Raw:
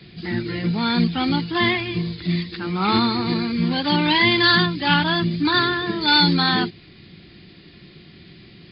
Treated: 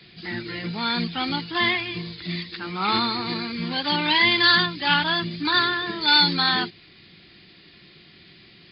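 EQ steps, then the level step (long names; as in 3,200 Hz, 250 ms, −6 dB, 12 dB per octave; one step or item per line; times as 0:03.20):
low-shelf EQ 480 Hz −10.5 dB
0.0 dB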